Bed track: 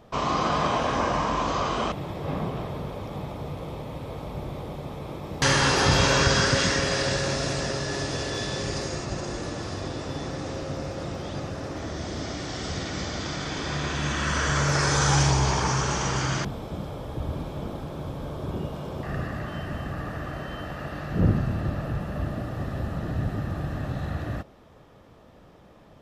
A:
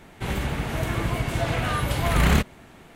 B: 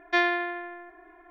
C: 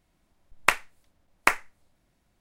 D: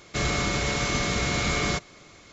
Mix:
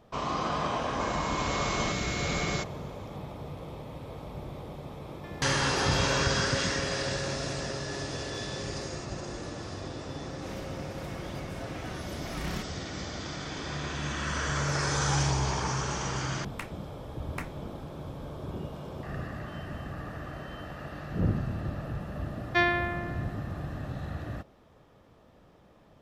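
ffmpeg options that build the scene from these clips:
-filter_complex "[2:a]asplit=2[s0][s1];[0:a]volume=0.501[s2];[4:a]dynaudnorm=f=200:g=5:m=2.82[s3];[s0]acompressor=threshold=0.0355:ratio=6:attack=3.2:release=140:knee=1:detection=peak[s4];[1:a]aecho=1:1:5.4:0.65[s5];[3:a]alimiter=limit=0.335:level=0:latency=1:release=19[s6];[s3]atrim=end=2.32,asetpts=PTS-STARTPTS,volume=0.188,afade=t=in:d=0.004:c=hsin,afade=t=out:st=2.316:d=0.004:c=hsin,adelay=850[s7];[s4]atrim=end=1.3,asetpts=PTS-STARTPTS,volume=0.126,afade=t=in:d=0.004:c=hsin,afade=t=out:st=1.296:d=0.004:c=hsin,adelay=5110[s8];[s5]atrim=end=2.95,asetpts=PTS-STARTPTS,volume=0.133,afade=t=in:d=0.004:c=hsin,afade=t=out:st=2.946:d=0.004:c=hsin,adelay=10210[s9];[s6]atrim=end=2.4,asetpts=PTS-STARTPTS,volume=0.188,afade=t=in:d=0.004:c=hsin,afade=t=out:st=2.396:d=0.004:c=hsin,adelay=15910[s10];[s1]atrim=end=1.3,asetpts=PTS-STARTPTS,volume=0.841,afade=t=in:d=0.004:c=hsin,afade=t=out:st=1.296:d=0.004:c=hsin,adelay=22420[s11];[s2][s7][s8][s9][s10][s11]amix=inputs=6:normalize=0"

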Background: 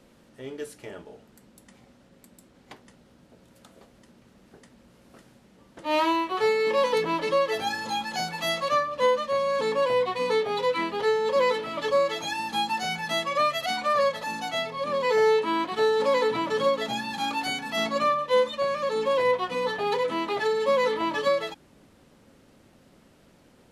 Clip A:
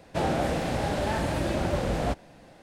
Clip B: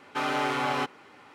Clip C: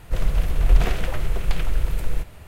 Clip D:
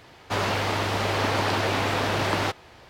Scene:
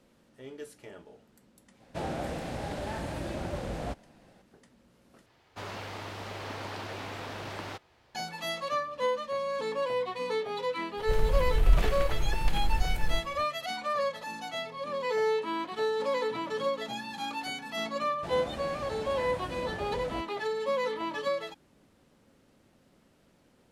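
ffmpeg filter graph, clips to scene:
-filter_complex "[1:a]asplit=2[s0][s1];[0:a]volume=0.447,asplit=2[s2][s3];[s2]atrim=end=5.264[s4];[4:a]atrim=end=2.89,asetpts=PTS-STARTPTS,volume=0.188[s5];[s3]atrim=start=8.146[s6];[s0]atrim=end=2.62,asetpts=PTS-STARTPTS,volume=0.398,afade=t=in:d=0.004:c=hsin,afade=t=out:st=2.616:d=0.004:c=hsin,adelay=1800[s7];[3:a]atrim=end=2.47,asetpts=PTS-STARTPTS,volume=0.501,afade=t=in:d=0.004:c=hsin,afade=t=out:st=2.466:d=0.004:c=hsin,adelay=10970[s8];[s1]atrim=end=2.62,asetpts=PTS-STARTPTS,volume=0.237,afade=t=in:d=0.004:c=hsin,afade=t=out:st=2.616:d=0.004:c=hsin,adelay=18080[s9];[s4][s5]acrossfade=d=0.004:c1=hsin:c2=hsin[s10];[s10][s6]acrossfade=d=0.004:c1=hsin:c2=hsin[s11];[s11][s7][s8][s9]amix=inputs=4:normalize=0"

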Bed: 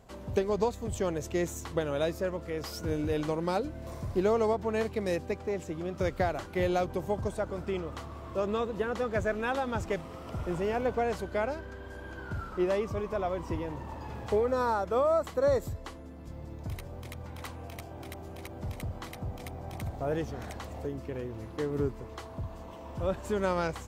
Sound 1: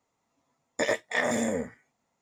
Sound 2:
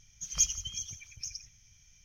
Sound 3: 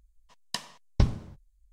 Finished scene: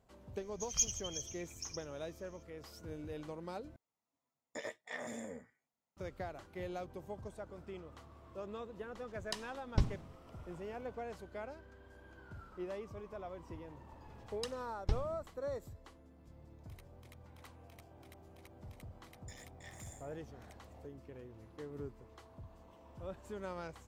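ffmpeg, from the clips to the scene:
-filter_complex "[1:a]asplit=2[s0][s1];[3:a]asplit=2[s2][s3];[0:a]volume=0.188[s4];[s3]aphaser=in_gain=1:out_gain=1:delay=3.1:decay=0.59:speed=1.6:type=triangular[s5];[s1]aderivative[s6];[s4]asplit=2[s7][s8];[s7]atrim=end=3.764[s9];[s0]atrim=end=2.21,asetpts=PTS-STARTPTS,volume=0.141[s10];[s8]atrim=start=5.966[s11];[2:a]atrim=end=2.04,asetpts=PTS-STARTPTS,volume=0.531,afade=t=in:d=0.004:c=hsin,afade=t=out:st=2.036:d=0.004:c=hsin,adelay=390[s12];[s2]atrim=end=1.72,asetpts=PTS-STARTPTS,volume=0.398,afade=t=in:d=0.004:c=hsin,afade=t=out:st=1.716:d=0.004:c=hsin,adelay=8780[s13];[s5]atrim=end=1.72,asetpts=PTS-STARTPTS,volume=0.224,afade=t=in:d=0.004:c=hsin,afade=t=out:st=1.716:d=0.004:c=hsin,adelay=13890[s14];[s6]atrim=end=2.21,asetpts=PTS-STARTPTS,volume=0.141,afade=t=in:d=0.004:c=hsin,afade=t=out:st=2.206:d=0.004:c=hsin,adelay=18490[s15];[s9][s10]acrossfade=d=0.004:c1=hsin:c2=hsin[s16];[s16][s11]acrossfade=d=0.004:c1=hsin:c2=hsin[s17];[s17][s12][s13][s14][s15]amix=inputs=5:normalize=0"

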